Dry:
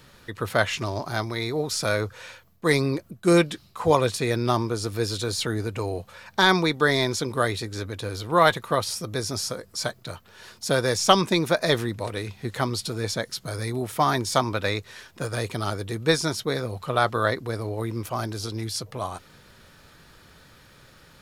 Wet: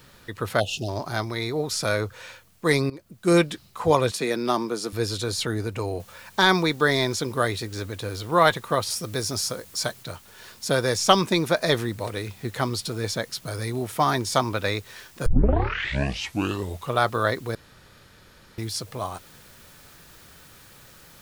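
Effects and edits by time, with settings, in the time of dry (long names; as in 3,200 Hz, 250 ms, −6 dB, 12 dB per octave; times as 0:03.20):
0:00.60–0:00.89: time-frequency box erased 850–2,500 Hz
0:02.90–0:03.36: fade in, from −18 dB
0:04.11–0:04.93: Butterworth high-pass 160 Hz
0:06.00: noise floor change −63 dB −53 dB
0:08.90–0:10.03: high-shelf EQ 4,900 Hz +4 dB
0:15.26: tape start 1.69 s
0:17.55–0:18.58: fill with room tone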